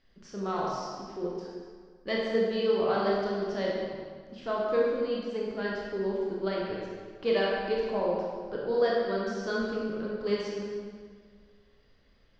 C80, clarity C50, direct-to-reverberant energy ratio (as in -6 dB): 0.5 dB, -1.5 dB, -4.5 dB